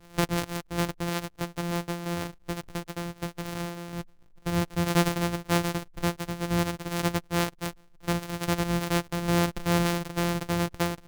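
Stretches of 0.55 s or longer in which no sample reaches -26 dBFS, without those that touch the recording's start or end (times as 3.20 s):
3.64–4.46 s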